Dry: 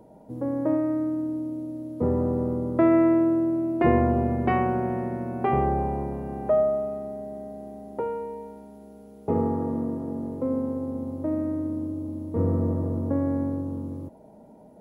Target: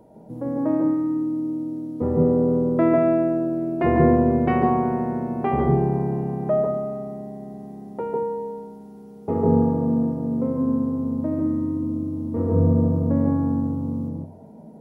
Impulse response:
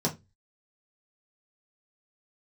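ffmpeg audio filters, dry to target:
-filter_complex "[0:a]asplit=2[a][b];[1:a]atrim=start_sample=2205,adelay=144[c];[b][c]afir=irnorm=-1:irlink=0,volume=-12dB[d];[a][d]amix=inputs=2:normalize=0"

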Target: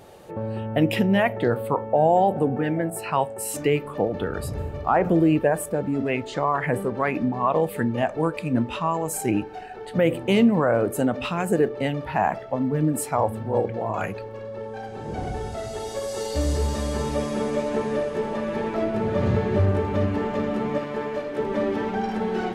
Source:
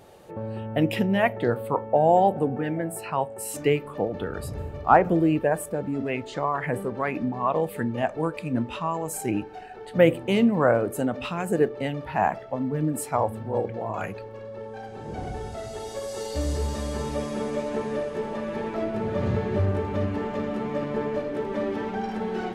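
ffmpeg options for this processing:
-filter_complex "[0:a]asettb=1/sr,asplit=3[a][b][c];[a]atrim=end=20.784[d];[b]atrim=start=20.78:end=21.38,asetpts=PTS-STARTPTS,afade=t=in:d=0.004:c=qsin,afade=t=out:st=0.596:d=0.004:c=qsin,lowshelf=f=480:g=-8.5[e];[c]atrim=start=21.376[f];[d][e]acrossfade=d=0.004:c1=hsin:c2=qsin[g];[g][f]acrossfade=d=0.004:c1=qsin:c2=hsin,alimiter=level_in=12.5dB:limit=-1dB:release=50:level=0:latency=1,asettb=1/sr,asplit=3[h][i][j];[h]atrim=end=2.904[k];[i]atrim=start=2.9:end=3.32,asetpts=PTS-STARTPTS,afade=t=in:d=0.004:c=qsin,afade=t=out:st=0.416:d=0.004:c=qsin,adynamicequalizer=threshold=0.0501:dfrequency=1500:dqfactor=0.7:tfrequency=1500:tqfactor=0.7:attack=5:release=100:ratio=0.375:range=3:mode=boostabove:tftype=highshelf[l];[j]atrim=start=3.316[m];[k][l]acrossfade=d=0.004:c1=hsin:c2=qsin[n];[n][m]acrossfade=d=0.004:c1=qsin:c2=hsin,volume=-9dB"

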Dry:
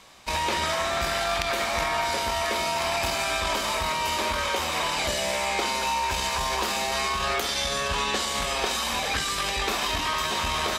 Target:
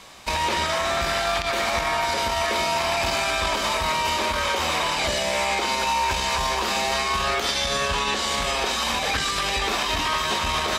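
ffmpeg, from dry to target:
-filter_complex "[0:a]acrossover=split=7200[a][b];[b]acompressor=threshold=-43dB:ratio=4:attack=1:release=60[c];[a][c]amix=inputs=2:normalize=0,alimiter=limit=-20dB:level=0:latency=1:release=101,volume=6dB"

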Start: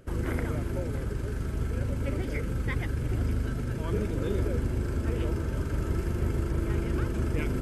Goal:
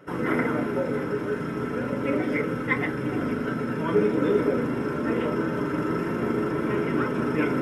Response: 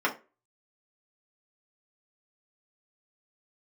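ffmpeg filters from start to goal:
-filter_complex "[1:a]atrim=start_sample=2205[a];[0:a][a]afir=irnorm=-1:irlink=0,volume=-2dB"

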